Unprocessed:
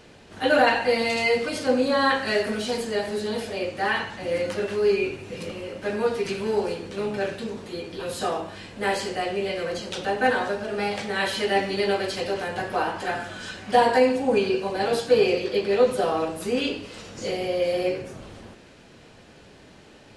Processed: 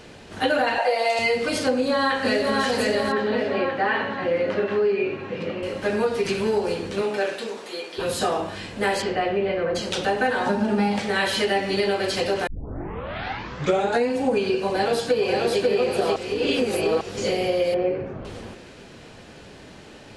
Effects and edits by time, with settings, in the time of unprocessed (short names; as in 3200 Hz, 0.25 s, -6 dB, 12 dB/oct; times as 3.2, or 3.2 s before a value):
0.78–1.19 resonant high-pass 640 Hz, resonance Q 3.8
1.71–2.55 echo throw 0.53 s, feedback 60%, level -4 dB
3.12–5.63 BPF 130–2600 Hz
7.01–7.97 HPF 290 Hz -> 630 Hz
9.01–9.74 LPF 3500 Hz -> 1500 Hz
10.46–10.99 small resonant body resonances 220/880 Hz, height 15 dB
12.47 tape start 1.63 s
14.68–15.66 echo throw 0.54 s, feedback 45%, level 0 dB
16.16–17.01 reverse
17.74–18.25 LPF 1600 Hz
whole clip: compressor, threshold -24 dBFS; gain +5.5 dB